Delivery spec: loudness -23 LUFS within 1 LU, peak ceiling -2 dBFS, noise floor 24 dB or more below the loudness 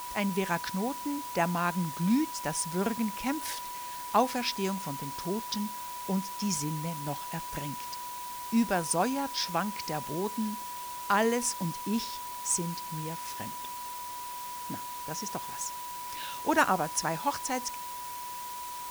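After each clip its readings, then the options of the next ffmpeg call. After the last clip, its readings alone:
steady tone 980 Hz; tone level -38 dBFS; noise floor -40 dBFS; noise floor target -56 dBFS; loudness -32.0 LUFS; peak -12.0 dBFS; loudness target -23.0 LUFS
-> -af "bandreject=f=980:w=30"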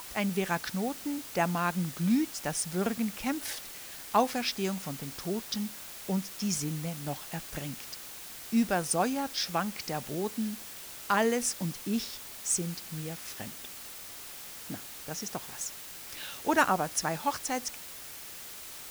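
steady tone none; noise floor -45 dBFS; noise floor target -57 dBFS
-> -af "afftdn=nr=12:nf=-45"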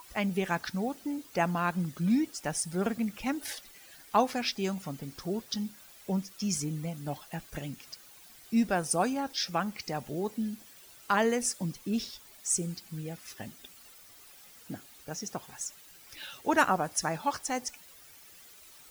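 noise floor -54 dBFS; noise floor target -56 dBFS
-> -af "afftdn=nr=6:nf=-54"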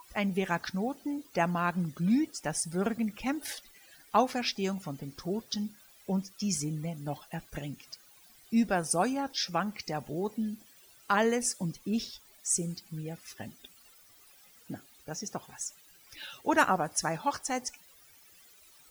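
noise floor -59 dBFS; loudness -32.0 LUFS; peak -12.0 dBFS; loudness target -23.0 LUFS
-> -af "volume=9dB"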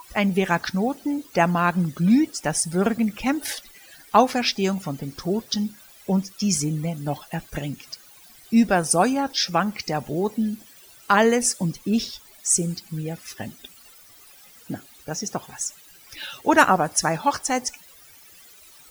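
loudness -23.0 LUFS; peak -3.0 dBFS; noise floor -50 dBFS

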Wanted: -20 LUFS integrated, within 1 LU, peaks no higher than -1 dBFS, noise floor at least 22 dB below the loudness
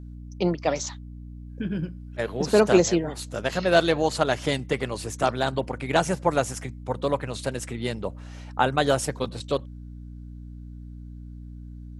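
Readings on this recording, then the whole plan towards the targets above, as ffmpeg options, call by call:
hum 60 Hz; harmonics up to 300 Hz; hum level -37 dBFS; loudness -25.5 LUFS; peak -4.5 dBFS; loudness target -20.0 LUFS
-> -af "bandreject=f=60:t=h:w=6,bandreject=f=120:t=h:w=6,bandreject=f=180:t=h:w=6,bandreject=f=240:t=h:w=6,bandreject=f=300:t=h:w=6"
-af "volume=5.5dB,alimiter=limit=-1dB:level=0:latency=1"

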